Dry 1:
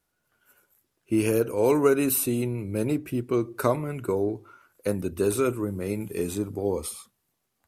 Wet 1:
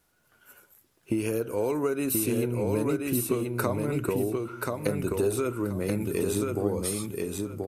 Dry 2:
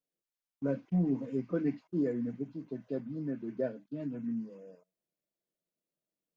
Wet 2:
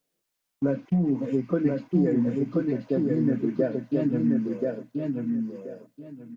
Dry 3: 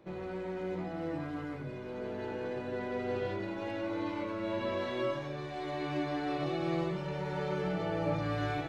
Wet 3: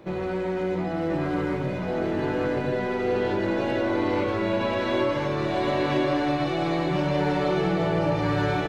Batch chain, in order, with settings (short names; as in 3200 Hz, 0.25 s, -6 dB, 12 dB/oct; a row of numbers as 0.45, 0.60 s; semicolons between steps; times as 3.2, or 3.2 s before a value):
compressor 6:1, threshold -33 dBFS; on a send: feedback echo 1.031 s, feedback 22%, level -3 dB; on the sum: normalise peaks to -12 dBFS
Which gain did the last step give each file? +7.5, +12.5, +11.5 dB